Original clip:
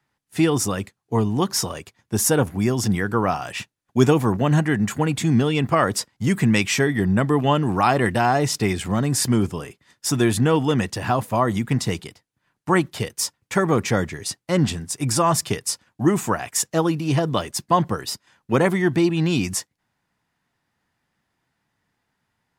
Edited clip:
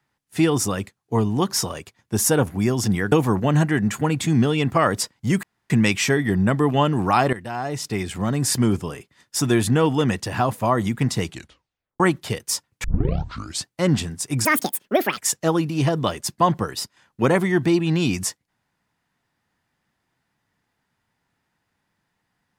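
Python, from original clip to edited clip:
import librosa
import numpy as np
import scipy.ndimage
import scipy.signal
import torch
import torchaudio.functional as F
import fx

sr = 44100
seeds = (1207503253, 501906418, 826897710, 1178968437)

y = fx.edit(x, sr, fx.cut(start_s=3.12, length_s=0.97),
    fx.insert_room_tone(at_s=6.4, length_s=0.27),
    fx.fade_in_from(start_s=8.03, length_s=1.18, floor_db=-16.0),
    fx.tape_stop(start_s=11.95, length_s=0.75),
    fx.tape_start(start_s=13.54, length_s=0.83),
    fx.speed_span(start_s=15.15, length_s=1.33, speed=1.83), tone=tone)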